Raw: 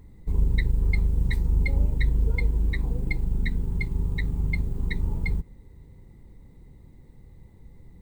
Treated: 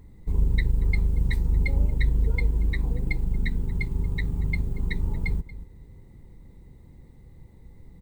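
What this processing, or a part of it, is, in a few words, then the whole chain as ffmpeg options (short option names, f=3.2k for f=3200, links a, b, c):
ducked delay: -filter_complex "[0:a]asplit=3[a][b][c];[b]adelay=232,volume=-7dB[d];[c]apad=whole_len=363783[e];[d][e]sidechaincompress=threshold=-36dB:ratio=8:attack=16:release=403[f];[a][f]amix=inputs=2:normalize=0"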